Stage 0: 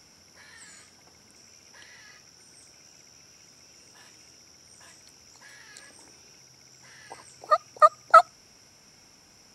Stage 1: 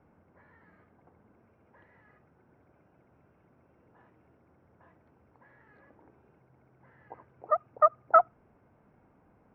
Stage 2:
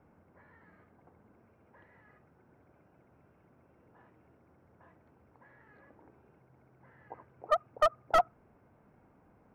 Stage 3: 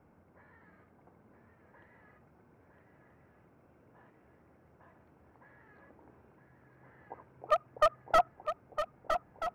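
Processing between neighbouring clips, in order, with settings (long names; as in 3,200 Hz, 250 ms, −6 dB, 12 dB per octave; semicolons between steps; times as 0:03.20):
Bessel low-pass filter 990 Hz, order 4; level −1 dB
slew-rate limiting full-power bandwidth 100 Hz
loose part that buzzes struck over −51 dBFS, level −34 dBFS; feedback echo with a long and a short gap by turns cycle 1,280 ms, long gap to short 3 to 1, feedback 47%, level −8 dB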